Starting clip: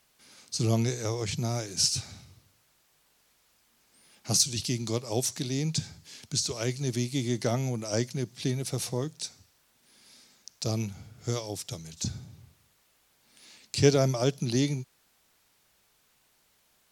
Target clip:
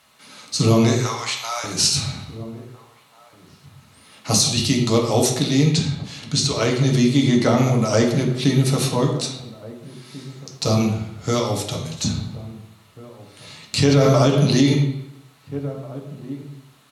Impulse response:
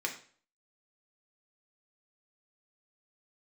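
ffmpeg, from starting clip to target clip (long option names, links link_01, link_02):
-filter_complex "[0:a]asettb=1/sr,asplit=3[link_01][link_02][link_03];[link_01]atrim=end=0.954[link_04];[link_02]atrim=start=0.95:end=1.64,asetpts=PTS-STARTPTS,afade=type=in:duration=0.004:curve=qsin,afade=type=out:start_time=0.686:duration=0.004:curve=qsin,highpass=frequency=840:width=0.5412,highpass=frequency=840:width=1.3066[link_05];[link_03]atrim=start=1.636[link_06];[link_04][link_05]acrossfade=duration=0.004:curve1=hsin:curve2=qsin[link_07];[link_07][link_06]acrossfade=duration=0.004:curve1=qsin:curve2=hsin,asettb=1/sr,asplit=3[link_08][link_09][link_10];[link_08]atrim=end=5.744[link_11];[link_09]atrim=start=5.74:end=7.57,asetpts=PTS-STARTPTS,afade=type=in:duration=0.004:curve=qsin,afade=type=out:start_time=1.826:duration=0.004:curve=qsin,highshelf=frequency=11000:gain=-10.5[link_12];[link_10]atrim=start=7.566[link_13];[link_11][link_12]acrossfade=duration=0.004:curve1=hsin:curve2=qsin[link_14];[link_14][link_13]acrossfade=duration=0.004:curve1=qsin:curve2=hsin,asplit=2[link_15][link_16];[link_16]adelay=1691,volume=-19dB,highshelf=frequency=4000:gain=-38[link_17];[link_15][link_17]amix=inputs=2:normalize=0[link_18];[1:a]atrim=start_sample=2205,asetrate=24255,aresample=44100[link_19];[link_18][link_19]afir=irnorm=-1:irlink=0,alimiter=level_in=11.5dB:limit=-1dB:release=50:level=0:latency=1,volume=-5dB"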